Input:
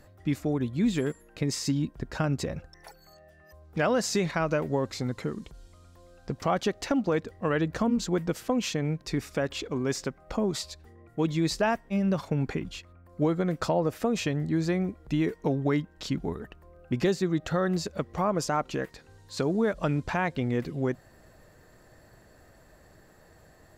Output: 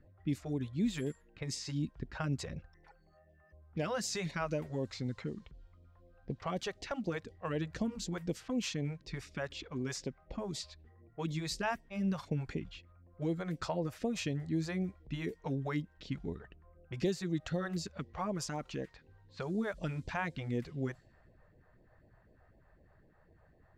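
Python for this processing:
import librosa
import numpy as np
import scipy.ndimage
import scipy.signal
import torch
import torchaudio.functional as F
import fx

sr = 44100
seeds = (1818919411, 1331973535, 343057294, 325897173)

y = fx.env_lowpass(x, sr, base_hz=1500.0, full_db=-22.5)
y = fx.phaser_stages(y, sr, stages=2, low_hz=230.0, high_hz=1400.0, hz=4.0, feedback_pct=0)
y = F.gain(torch.from_numpy(y), -5.5).numpy()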